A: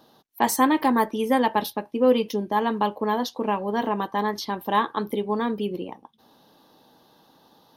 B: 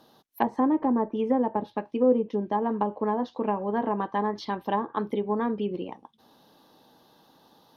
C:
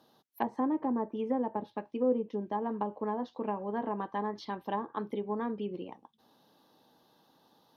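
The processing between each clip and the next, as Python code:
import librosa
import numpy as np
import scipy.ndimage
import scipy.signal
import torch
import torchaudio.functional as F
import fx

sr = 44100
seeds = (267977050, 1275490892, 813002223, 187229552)

y1 = fx.env_lowpass_down(x, sr, base_hz=650.0, full_db=-18.0)
y1 = F.gain(torch.from_numpy(y1), -1.5).numpy()
y2 = scipy.signal.sosfilt(scipy.signal.butter(2, 66.0, 'highpass', fs=sr, output='sos'), y1)
y2 = F.gain(torch.from_numpy(y2), -7.0).numpy()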